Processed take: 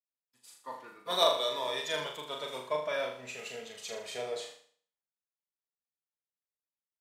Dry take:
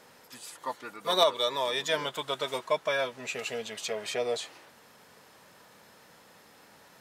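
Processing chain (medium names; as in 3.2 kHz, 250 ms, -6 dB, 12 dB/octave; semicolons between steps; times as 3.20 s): gate -45 dBFS, range -34 dB; flutter echo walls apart 6.8 m, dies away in 0.58 s; three bands expanded up and down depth 40%; trim -7 dB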